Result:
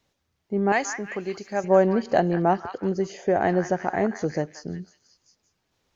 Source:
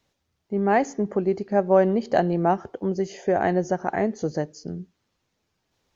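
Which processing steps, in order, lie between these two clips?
0.72–1.64 tilt shelf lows -9.5 dB, about 1300 Hz; delay with a stepping band-pass 0.179 s, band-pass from 1400 Hz, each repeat 0.7 oct, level -6 dB

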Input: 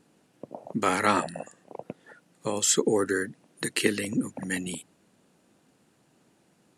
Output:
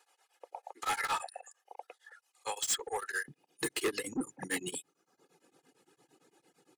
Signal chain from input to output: reverb removal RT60 0.77 s; HPF 680 Hz 24 dB/oct, from 3.28 s 150 Hz; comb 2.4 ms, depth 73%; soft clip -28 dBFS, distortion -5 dB; beating tremolo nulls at 8.8 Hz; gain +1.5 dB

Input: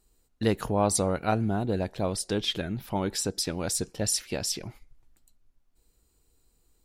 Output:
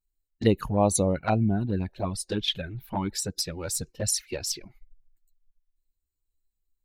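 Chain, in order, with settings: per-bin expansion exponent 1.5; envelope flanger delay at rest 10.2 ms, full sweep at -23 dBFS; gain +5.5 dB

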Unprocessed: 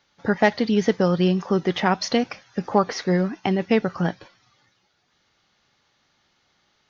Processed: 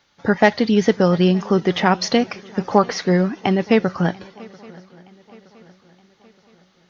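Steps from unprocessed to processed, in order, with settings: swung echo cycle 0.92 s, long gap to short 3:1, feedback 45%, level -24 dB; gain +4 dB

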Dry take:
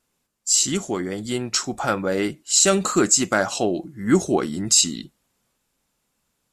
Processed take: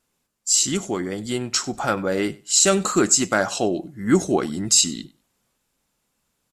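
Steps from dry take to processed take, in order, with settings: feedback echo 96 ms, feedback 16%, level -22 dB

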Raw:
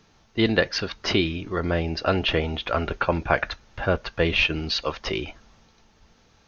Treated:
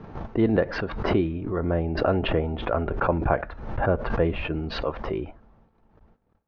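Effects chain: LPF 1000 Hz 12 dB/oct; gate -57 dBFS, range -21 dB; backwards sustainer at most 60 dB/s

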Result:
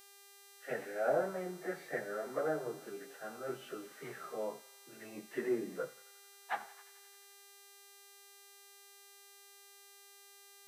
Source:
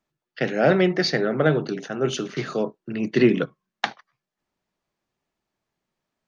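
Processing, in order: treble ducked by the level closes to 1200 Hz, closed at -15 dBFS; three-band isolator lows -16 dB, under 430 Hz, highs -23 dB, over 2100 Hz; plain phase-vocoder stretch 1.7×; buzz 400 Hz, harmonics 37, -51 dBFS -1 dB/oct; on a send: thinning echo 88 ms, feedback 81%, high-pass 780 Hz, level -18 dB; on the sum: gain -8.5 dB

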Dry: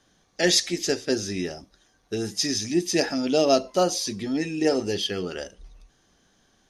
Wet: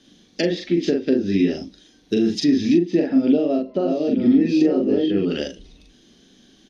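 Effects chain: 3.16–5.21 reverse delay 0.557 s, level -3.5 dB; dynamic EQ 560 Hz, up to +4 dB, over -33 dBFS, Q 2.7; treble ducked by the level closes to 1500 Hz, closed at -21.5 dBFS; doubler 41 ms -2 dB; compressor 4:1, threshold -26 dBFS, peak gain reduction 12.5 dB; EQ curve 110 Hz 0 dB, 250 Hz +14 dB, 840 Hz -5 dB, 1300 Hz -4 dB, 3400 Hz +10 dB, 7800 Hz -1 dB; gain +2 dB

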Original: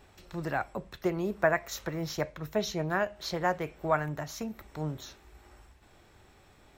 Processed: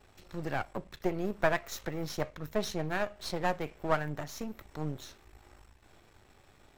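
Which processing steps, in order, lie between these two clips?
half-wave gain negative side -12 dB; gain +1 dB

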